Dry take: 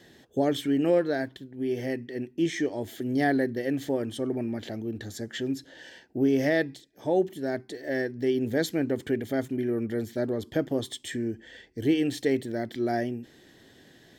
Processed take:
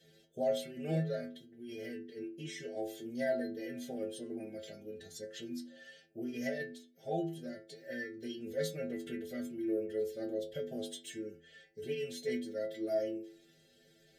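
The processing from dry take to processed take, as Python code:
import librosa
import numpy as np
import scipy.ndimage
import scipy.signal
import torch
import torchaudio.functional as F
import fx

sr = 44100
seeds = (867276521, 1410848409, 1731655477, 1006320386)

y = fx.fixed_phaser(x, sr, hz=300.0, stages=6)
y = fx.pitch_keep_formants(y, sr, semitones=-1.5)
y = fx.stiff_resonator(y, sr, f0_hz=79.0, decay_s=0.61, stiffness=0.008)
y = y * 10.0 ** (5.0 / 20.0)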